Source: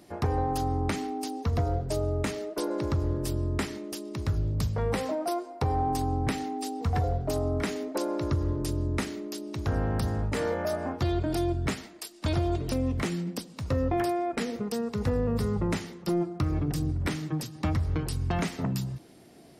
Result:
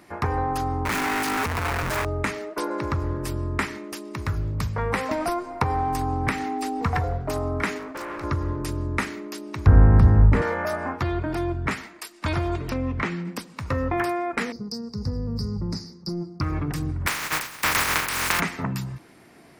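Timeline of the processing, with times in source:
0.85–2.05 infinite clipping
4.1–4.51 high shelf 11000 Hz +8 dB
5.11–6.97 three-band squash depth 100%
7.78–8.24 overloaded stage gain 35.5 dB
9.66–10.42 tilt -4 dB/oct
11.02–11.71 high shelf 3600 Hz -9.5 dB
12.7–13.25 air absorption 120 m
14.52–16.41 EQ curve 180 Hz 0 dB, 3200 Hz -29 dB, 4800 Hz +12 dB, 7300 Hz -9 dB
17.06–18.39 spectral contrast lowered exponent 0.16
whole clip: band shelf 1500 Hz +9 dB; gain +1 dB

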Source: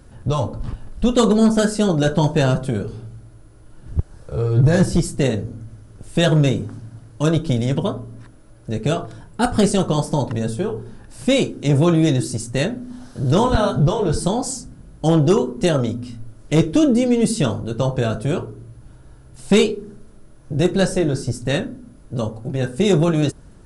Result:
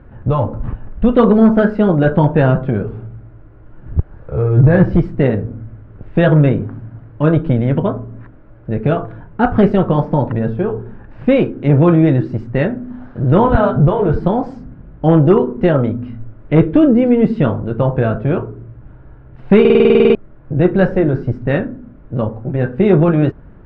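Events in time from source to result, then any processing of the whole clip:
19.6 stutter in place 0.05 s, 11 plays
whole clip: LPF 2200 Hz 24 dB/oct; gain +5 dB

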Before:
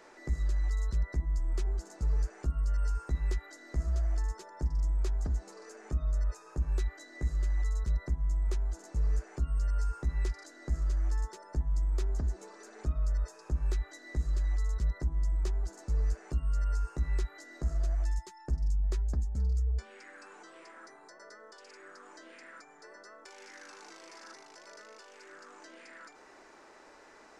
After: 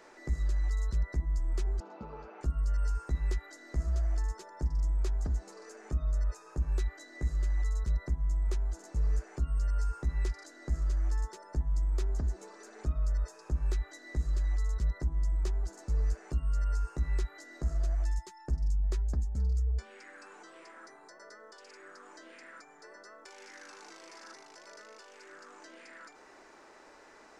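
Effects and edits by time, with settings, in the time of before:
1.8–2.41 speaker cabinet 190–3500 Hz, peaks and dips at 220 Hz +8 dB, 530 Hz +6 dB, 890 Hz +8 dB, 1300 Hz +6 dB, 1800 Hz -10 dB, 2600 Hz +6 dB

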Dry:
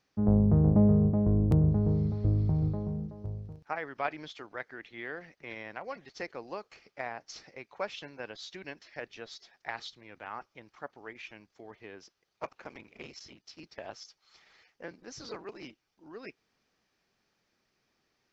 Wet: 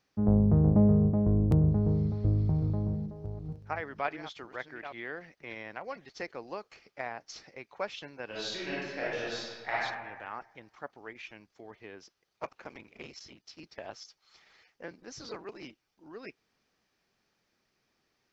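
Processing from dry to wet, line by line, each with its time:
2.13–5.05 reverse delay 0.466 s, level -11 dB
8.25–9.74 reverb throw, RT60 1.4 s, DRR -8.5 dB

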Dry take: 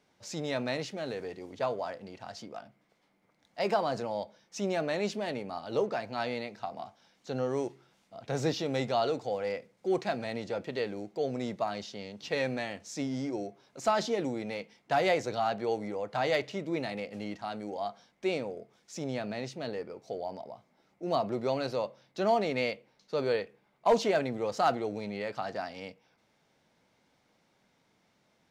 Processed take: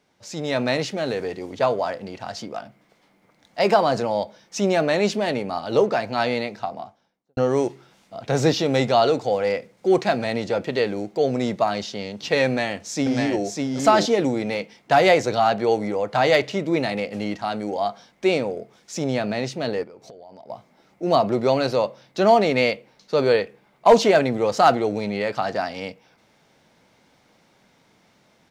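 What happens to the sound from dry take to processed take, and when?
6.41–7.37 studio fade out
12.46–13.45 echo throw 0.6 s, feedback 10%, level -3 dB
19.83–20.5 compressor 10:1, threshold -51 dBFS
whole clip: AGC gain up to 7.5 dB; gain +3.5 dB

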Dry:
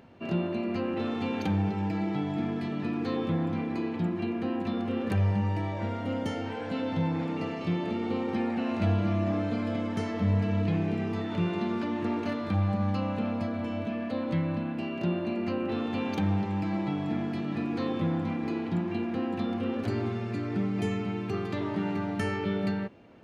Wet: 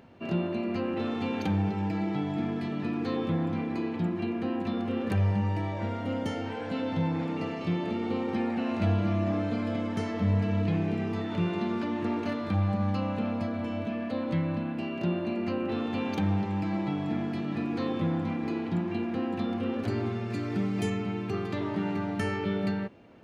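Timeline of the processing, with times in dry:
20.3–20.9 high shelf 4400 Hz +8.5 dB

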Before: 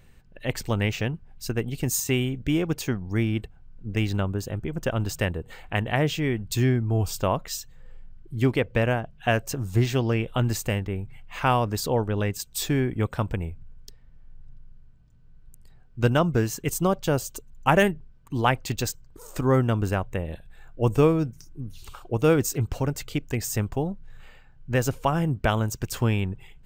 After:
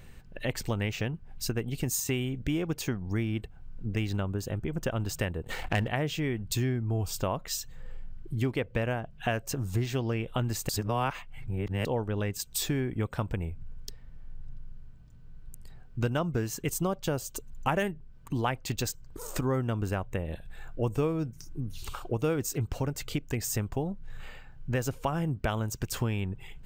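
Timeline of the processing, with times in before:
5.44–5.88 sample leveller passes 2
10.69–11.85 reverse
whole clip: compressor 2.5:1, threshold -36 dBFS; gain +4.5 dB

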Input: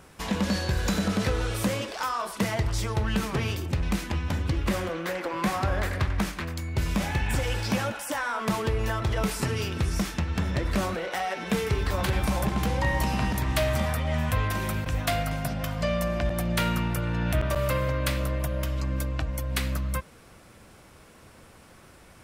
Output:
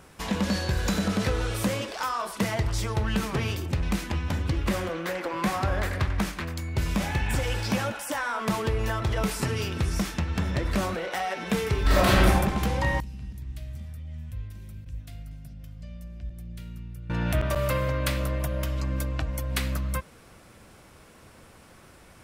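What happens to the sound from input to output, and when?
11.82–12.26 reverb throw, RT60 1 s, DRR -8.5 dB
13–17.1 passive tone stack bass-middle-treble 10-0-1

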